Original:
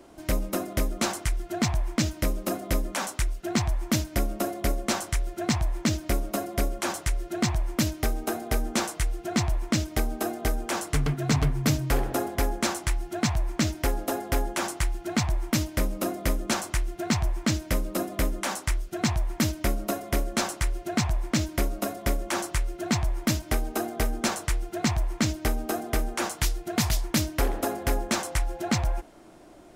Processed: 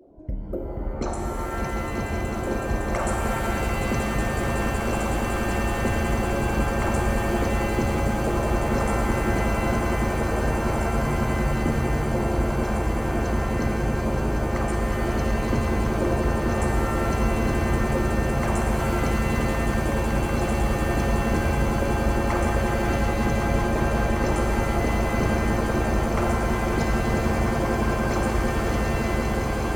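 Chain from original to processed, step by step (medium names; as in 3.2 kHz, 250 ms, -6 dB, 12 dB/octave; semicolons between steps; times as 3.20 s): resonances exaggerated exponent 3; compression, threshold -26 dBFS, peak gain reduction 7.5 dB; random-step tremolo; on a send: echo with a slow build-up 186 ms, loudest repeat 8, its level -8 dB; on the sum: pitch-shifted reverb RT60 3.3 s, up +7 st, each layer -2 dB, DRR 0.5 dB; trim +2 dB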